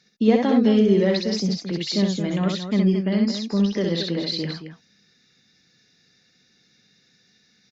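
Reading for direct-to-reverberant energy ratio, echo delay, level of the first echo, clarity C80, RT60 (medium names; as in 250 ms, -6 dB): no reverb, 65 ms, -3.5 dB, no reverb, no reverb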